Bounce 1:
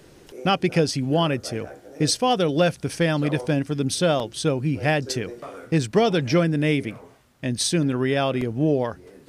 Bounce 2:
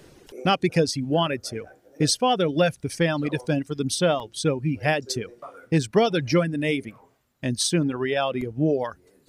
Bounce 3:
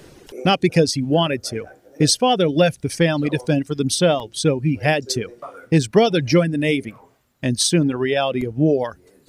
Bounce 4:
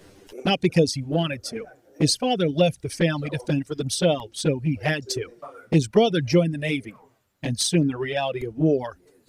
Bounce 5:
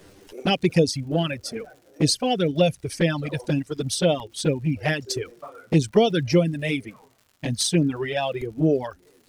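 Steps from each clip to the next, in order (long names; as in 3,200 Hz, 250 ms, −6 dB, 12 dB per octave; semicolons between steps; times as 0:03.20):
reverb reduction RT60 1.8 s
dynamic equaliser 1,200 Hz, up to −5 dB, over −38 dBFS, Q 1.4; level +5.5 dB
flanger swept by the level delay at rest 11.3 ms, full sweep at −11 dBFS; level −2 dB
surface crackle 190 per second −45 dBFS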